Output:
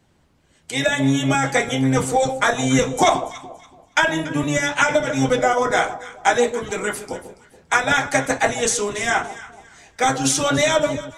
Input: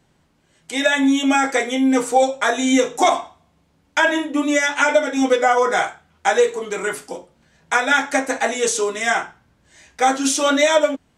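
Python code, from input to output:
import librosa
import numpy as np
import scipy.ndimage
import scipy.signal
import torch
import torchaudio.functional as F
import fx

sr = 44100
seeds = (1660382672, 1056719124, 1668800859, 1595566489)

y = fx.octave_divider(x, sr, octaves=1, level_db=-2.0)
y = fx.echo_alternate(y, sr, ms=142, hz=980.0, feedback_pct=52, wet_db=-10.5)
y = fx.hpss(y, sr, part='percussive', gain_db=6)
y = y * 10.0 ** (-3.5 / 20.0)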